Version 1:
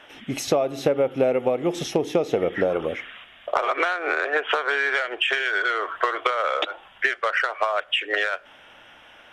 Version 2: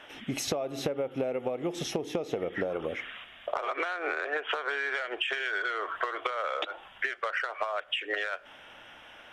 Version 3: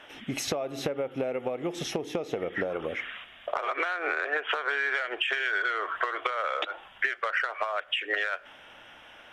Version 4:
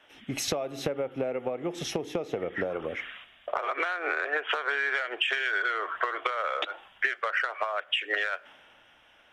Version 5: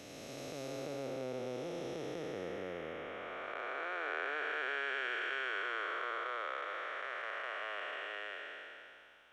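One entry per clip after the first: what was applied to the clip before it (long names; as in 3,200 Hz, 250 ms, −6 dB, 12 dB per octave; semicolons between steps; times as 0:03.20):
downward compressor 5 to 1, threshold −27 dBFS, peak gain reduction 11 dB; level −1.5 dB
dynamic equaliser 1,800 Hz, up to +4 dB, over −44 dBFS, Q 0.95
multiband upward and downward expander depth 40%
spectrum smeared in time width 973 ms; level −4.5 dB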